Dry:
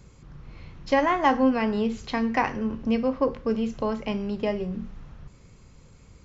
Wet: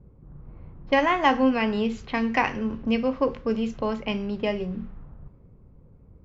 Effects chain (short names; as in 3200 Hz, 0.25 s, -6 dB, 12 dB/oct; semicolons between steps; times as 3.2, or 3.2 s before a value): dynamic EQ 2700 Hz, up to +7 dB, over -45 dBFS, Q 1.6; low-pass opened by the level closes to 540 Hz, open at -22 dBFS